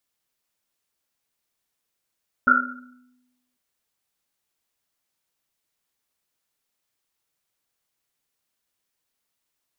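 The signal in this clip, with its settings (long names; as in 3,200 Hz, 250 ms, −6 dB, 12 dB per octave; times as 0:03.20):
drum after Risset, pitch 250 Hz, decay 1.13 s, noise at 1,400 Hz, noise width 140 Hz, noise 75%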